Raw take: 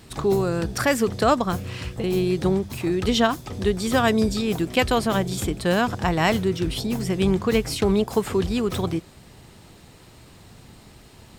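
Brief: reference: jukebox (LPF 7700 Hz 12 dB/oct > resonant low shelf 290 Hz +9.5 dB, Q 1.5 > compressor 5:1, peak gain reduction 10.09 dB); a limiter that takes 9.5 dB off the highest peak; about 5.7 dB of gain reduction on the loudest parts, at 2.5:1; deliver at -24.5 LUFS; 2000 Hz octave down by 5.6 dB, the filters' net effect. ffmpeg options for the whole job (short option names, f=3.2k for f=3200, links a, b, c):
-af "equalizer=f=2k:t=o:g=-7,acompressor=threshold=-24dB:ratio=2.5,alimiter=limit=-21.5dB:level=0:latency=1,lowpass=7.7k,lowshelf=f=290:t=q:w=1.5:g=9.5,acompressor=threshold=-26dB:ratio=5,volume=5.5dB"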